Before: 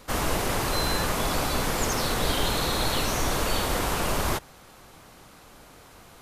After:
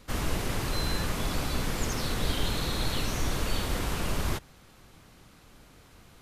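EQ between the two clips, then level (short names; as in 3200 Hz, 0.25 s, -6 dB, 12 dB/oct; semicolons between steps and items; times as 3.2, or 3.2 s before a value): bell 780 Hz -9 dB 2.5 oct; high shelf 4400 Hz -8.5 dB; 0.0 dB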